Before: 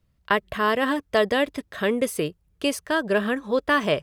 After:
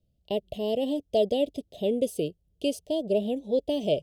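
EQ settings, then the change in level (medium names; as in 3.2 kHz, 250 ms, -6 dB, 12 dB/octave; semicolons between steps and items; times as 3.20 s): Chebyshev band-stop 670–3000 Hz, order 3; bass shelf 260 Hz -5 dB; treble shelf 2.5 kHz -8.5 dB; 0.0 dB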